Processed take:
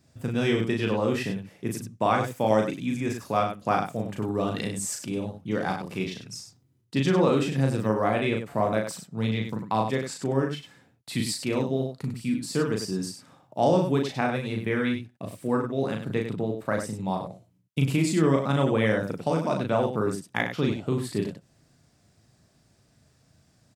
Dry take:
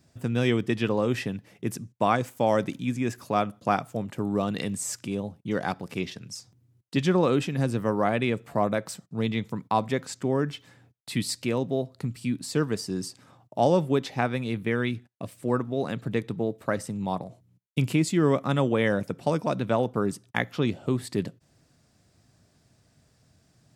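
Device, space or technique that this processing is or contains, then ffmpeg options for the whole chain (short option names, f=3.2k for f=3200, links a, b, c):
slapback doubling: -filter_complex "[0:a]asplit=3[a][b][c];[b]adelay=37,volume=-3dB[d];[c]adelay=98,volume=-7.5dB[e];[a][d][e]amix=inputs=3:normalize=0,volume=-1.5dB"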